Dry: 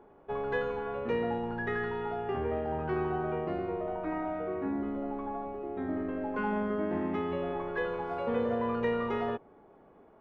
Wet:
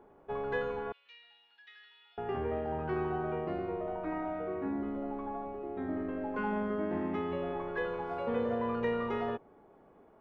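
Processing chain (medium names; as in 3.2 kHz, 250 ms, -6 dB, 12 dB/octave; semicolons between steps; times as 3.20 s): 0.92–2.18 s: Butterworth band-pass 3.8 kHz, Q 1.7; trim -2 dB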